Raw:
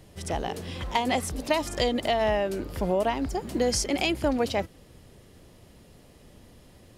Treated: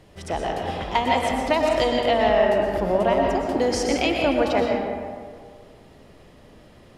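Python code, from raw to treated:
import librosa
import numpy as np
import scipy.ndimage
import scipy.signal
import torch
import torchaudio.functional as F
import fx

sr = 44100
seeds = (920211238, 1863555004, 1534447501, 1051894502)

y = fx.lowpass(x, sr, hz=2400.0, slope=6)
y = fx.low_shelf(y, sr, hz=360.0, db=-7.5)
y = fx.rev_freeverb(y, sr, rt60_s=1.9, hf_ratio=0.45, predelay_ms=80, drr_db=0.0)
y = y * librosa.db_to_amplitude(5.5)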